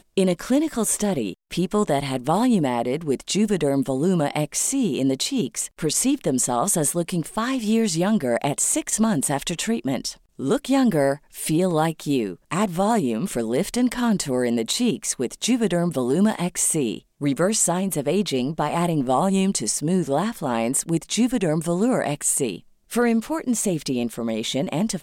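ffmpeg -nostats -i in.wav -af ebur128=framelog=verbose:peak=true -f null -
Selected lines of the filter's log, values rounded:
Integrated loudness:
  I:         -22.4 LUFS
  Threshold: -32.4 LUFS
Loudness range:
  LRA:         1.2 LU
  Threshold: -42.3 LUFS
  LRA low:   -22.9 LUFS
  LRA high:  -21.7 LUFS
True peak:
  Peak:       -7.9 dBFS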